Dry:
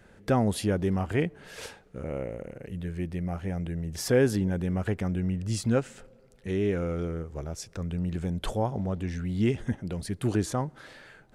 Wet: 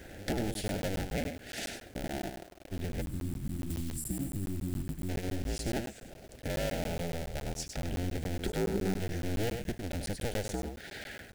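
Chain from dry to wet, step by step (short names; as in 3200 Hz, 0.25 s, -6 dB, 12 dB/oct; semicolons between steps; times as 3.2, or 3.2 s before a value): cycle switcher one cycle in 2, inverted; compressor 3:1, threshold -44 dBFS, peak gain reduction 19 dB; Butterworth band-stop 1100 Hz, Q 1.6; 2.29–2.75 gate -44 dBFS, range -20 dB; echo 0.1 s -6.5 dB; 3.01–5.09 spectral gain 370–7100 Hz -21 dB; 8.39–9 thirty-one-band EQ 200 Hz +9 dB, 400 Hz +11 dB, 630 Hz -5 dB, 1250 Hz +6 dB, 3150 Hz -5 dB; companded quantiser 6-bit; crackling interface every 0.14 s, samples 512, zero, from 0.54; 3.7–4.19 three-band squash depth 70%; gain +7.5 dB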